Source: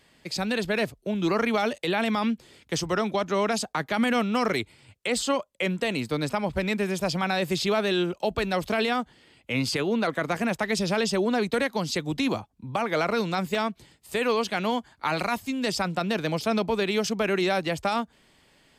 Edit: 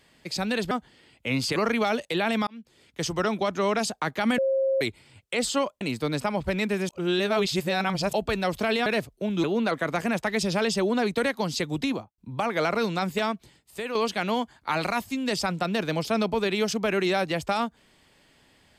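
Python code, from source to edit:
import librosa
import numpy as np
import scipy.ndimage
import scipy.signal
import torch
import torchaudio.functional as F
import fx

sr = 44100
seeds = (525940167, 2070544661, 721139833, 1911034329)

y = fx.studio_fade_out(x, sr, start_s=12.16, length_s=0.38)
y = fx.edit(y, sr, fx.swap(start_s=0.71, length_s=0.58, other_s=8.95, other_length_s=0.85),
    fx.fade_in_span(start_s=2.2, length_s=0.66),
    fx.bleep(start_s=4.11, length_s=0.43, hz=536.0, db=-20.5),
    fx.cut(start_s=5.54, length_s=0.36),
    fx.reverse_span(start_s=6.98, length_s=1.24),
    fx.fade_out_to(start_s=13.62, length_s=0.69, floor_db=-8.5), tone=tone)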